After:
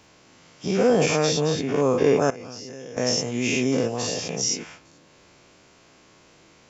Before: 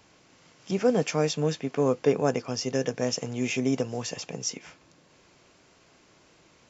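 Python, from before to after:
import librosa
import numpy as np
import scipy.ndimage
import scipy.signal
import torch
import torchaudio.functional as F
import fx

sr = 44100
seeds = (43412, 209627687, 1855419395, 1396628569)

y = fx.spec_dilate(x, sr, span_ms=120)
y = fx.level_steps(y, sr, step_db=19, at=(2.3, 2.97))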